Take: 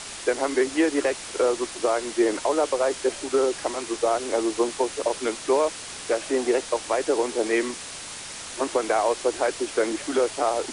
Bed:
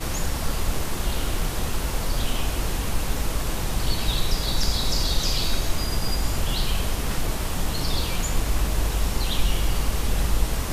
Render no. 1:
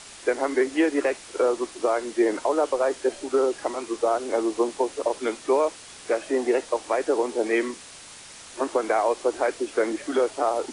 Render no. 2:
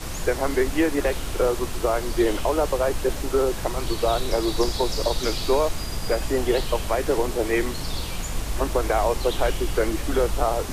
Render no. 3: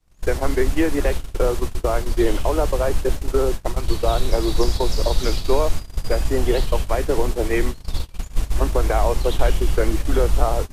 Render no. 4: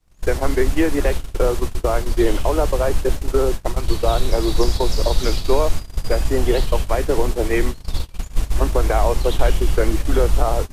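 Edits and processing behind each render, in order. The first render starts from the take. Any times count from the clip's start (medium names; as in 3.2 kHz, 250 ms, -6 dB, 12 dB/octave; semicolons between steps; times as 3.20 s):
noise print and reduce 7 dB
add bed -4.5 dB
gate -25 dBFS, range -40 dB; bass shelf 130 Hz +10 dB
trim +1.5 dB; peak limiter -3 dBFS, peak gain reduction 2.5 dB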